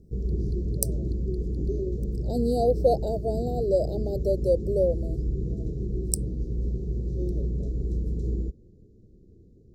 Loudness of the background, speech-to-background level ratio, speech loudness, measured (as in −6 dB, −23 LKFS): −31.0 LKFS, 4.0 dB, −27.0 LKFS